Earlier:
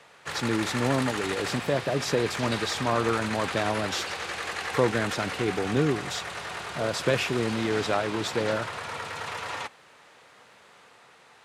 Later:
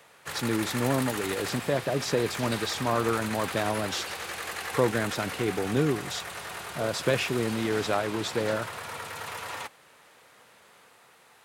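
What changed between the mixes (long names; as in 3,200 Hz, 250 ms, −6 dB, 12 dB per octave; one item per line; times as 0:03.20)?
background: remove low-pass filter 6,800 Hz 12 dB per octave
reverb: off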